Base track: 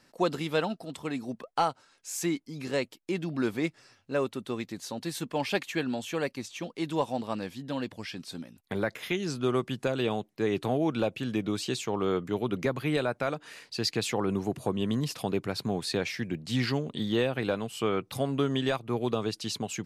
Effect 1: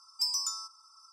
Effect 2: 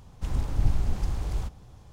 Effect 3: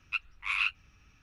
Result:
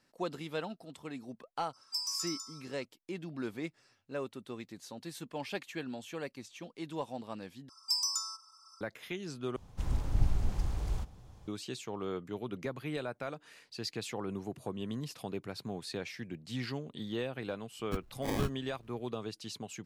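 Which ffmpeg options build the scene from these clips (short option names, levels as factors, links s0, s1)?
-filter_complex "[1:a]asplit=2[s0][s1];[0:a]volume=0.335[s2];[s0]aecho=1:1:202:0.501[s3];[3:a]acrusher=samples=32:mix=1:aa=0.000001[s4];[s2]asplit=3[s5][s6][s7];[s5]atrim=end=7.694[s8];[s1]atrim=end=1.12,asetpts=PTS-STARTPTS,volume=0.891[s9];[s6]atrim=start=8.806:end=9.564[s10];[2:a]atrim=end=1.92,asetpts=PTS-STARTPTS,volume=0.596[s11];[s7]atrim=start=11.476[s12];[s3]atrim=end=1.12,asetpts=PTS-STARTPTS,volume=0.531,afade=t=in:d=0.004:c=hsin,afade=t=out:st=1.116:d=0.004:c=hsin,adelay=1730[s13];[s4]atrim=end=1.22,asetpts=PTS-STARTPTS,volume=0.708,afade=t=in:d=0.004:c=hsin,afade=t=out:st=1.216:d=0.004:c=hsin,adelay=17790[s14];[s8][s9]acrossfade=d=0.004:c1=hsin:c2=hsin[s15];[s15][s10]acrossfade=d=0.004:c1=hsin:c2=hsin[s16];[s16][s11]acrossfade=d=0.004:c1=hsin:c2=hsin[s17];[s17][s12]acrossfade=d=0.004:c1=hsin:c2=hsin[s18];[s18][s13][s14]amix=inputs=3:normalize=0"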